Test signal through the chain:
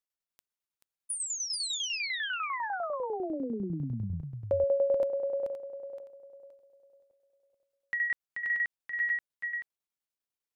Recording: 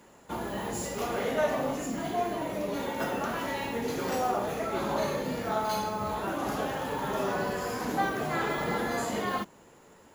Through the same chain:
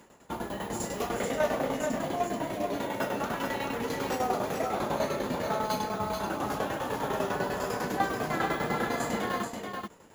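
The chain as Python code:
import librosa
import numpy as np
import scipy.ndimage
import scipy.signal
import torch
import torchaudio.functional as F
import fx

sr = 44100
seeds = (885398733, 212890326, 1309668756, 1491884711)

p1 = fx.tremolo_shape(x, sr, shape='saw_down', hz=10.0, depth_pct=75)
p2 = p1 + fx.echo_single(p1, sr, ms=433, db=-5.0, dry=0)
y = F.gain(torch.from_numpy(p2), 2.5).numpy()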